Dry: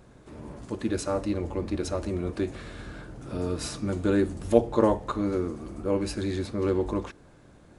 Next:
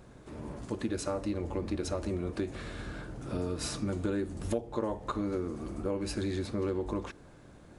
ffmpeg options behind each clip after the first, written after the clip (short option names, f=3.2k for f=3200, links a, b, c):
-af "acompressor=threshold=-29dB:ratio=6"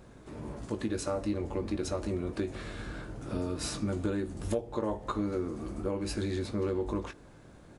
-filter_complex "[0:a]asplit=2[a][b];[b]adelay=19,volume=-9.5dB[c];[a][c]amix=inputs=2:normalize=0"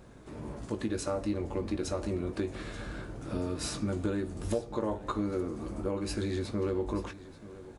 -af "aecho=1:1:883:0.141"